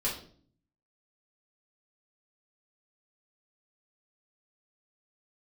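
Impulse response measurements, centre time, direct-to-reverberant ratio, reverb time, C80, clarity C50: 30 ms, -7.0 dB, 0.50 s, 11.0 dB, 6.0 dB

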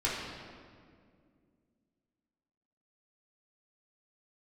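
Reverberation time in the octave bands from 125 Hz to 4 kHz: 2.8, 3.1, 2.4, 1.8, 1.6, 1.3 s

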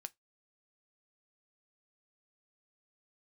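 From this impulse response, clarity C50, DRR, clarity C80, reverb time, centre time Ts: 30.0 dB, 10.5 dB, 41.5 dB, 0.15 s, 2 ms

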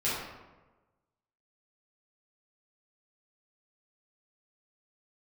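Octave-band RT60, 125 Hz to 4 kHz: 1.3, 1.2, 1.2, 1.1, 0.90, 0.65 s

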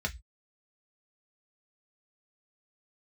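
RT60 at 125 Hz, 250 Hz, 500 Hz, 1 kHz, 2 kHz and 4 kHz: 0.35, 0.15, 0.10, 0.15, 0.20, 0.20 s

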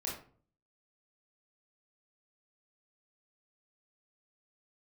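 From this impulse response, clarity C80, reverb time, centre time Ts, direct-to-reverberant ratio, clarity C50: 9.5 dB, 0.45 s, 38 ms, -4.0 dB, 4.5 dB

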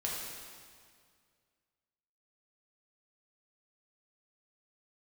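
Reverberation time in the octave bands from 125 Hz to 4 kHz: 2.4, 2.2, 2.0, 2.0, 1.9, 1.8 s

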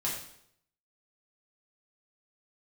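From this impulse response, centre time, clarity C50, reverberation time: 40 ms, 4.0 dB, 0.70 s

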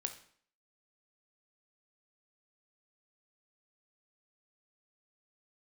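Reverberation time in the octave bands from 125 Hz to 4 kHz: 0.50, 0.60, 0.55, 0.55, 0.55, 0.50 s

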